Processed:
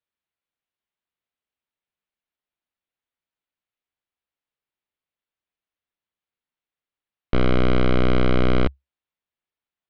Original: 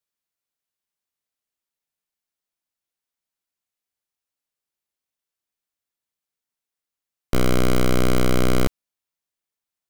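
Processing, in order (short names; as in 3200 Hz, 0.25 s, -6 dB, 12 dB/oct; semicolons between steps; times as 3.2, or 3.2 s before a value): inverse Chebyshev low-pass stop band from 8600 Hz, stop band 50 dB; bell 68 Hz +4 dB 0.33 oct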